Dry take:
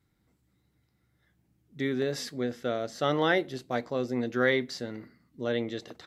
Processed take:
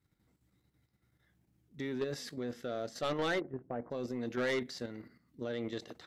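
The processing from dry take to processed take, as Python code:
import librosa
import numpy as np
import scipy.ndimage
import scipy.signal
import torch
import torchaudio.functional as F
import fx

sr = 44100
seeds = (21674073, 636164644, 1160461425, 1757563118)

y = fx.bessel_lowpass(x, sr, hz=1000.0, order=8, at=(3.39, 3.9), fade=0.02)
y = fx.level_steps(y, sr, step_db=9)
y = 10.0 ** (-27.5 / 20.0) * np.tanh(y / 10.0 ** (-27.5 / 20.0))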